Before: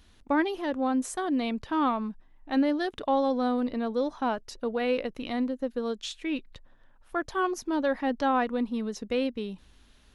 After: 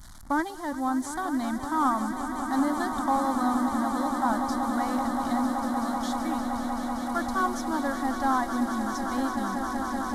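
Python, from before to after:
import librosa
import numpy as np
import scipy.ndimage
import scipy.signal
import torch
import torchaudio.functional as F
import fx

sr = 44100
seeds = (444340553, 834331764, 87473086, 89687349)

y = fx.delta_mod(x, sr, bps=64000, step_db=-42.0)
y = fx.fixed_phaser(y, sr, hz=1100.0, stages=4)
y = fx.echo_swell(y, sr, ms=190, loudest=8, wet_db=-11.0)
y = y * librosa.db_to_amplitude(3.5)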